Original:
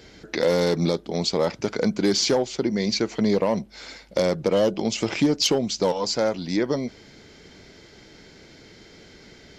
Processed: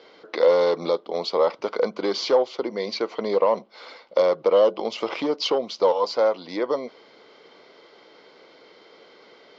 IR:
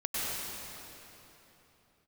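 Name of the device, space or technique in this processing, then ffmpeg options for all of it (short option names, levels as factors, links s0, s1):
phone earpiece: -af "highpass=500,equalizer=f=500:t=q:w=4:g=6,equalizer=f=1100:t=q:w=4:g=8,equalizer=f=1700:t=q:w=4:g=-9,equalizer=f=2500:t=q:w=4:g=-6,equalizer=f=3700:t=q:w=4:g=-3,lowpass=f=4000:w=0.5412,lowpass=f=4000:w=1.3066,volume=1.26"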